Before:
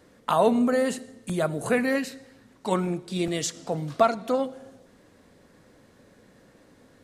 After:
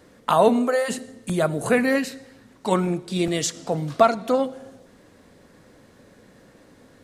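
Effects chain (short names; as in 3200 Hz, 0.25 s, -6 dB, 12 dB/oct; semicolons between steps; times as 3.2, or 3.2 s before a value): 0.48–0.88 HPF 160 Hz -> 670 Hz 24 dB/oct; gain +4 dB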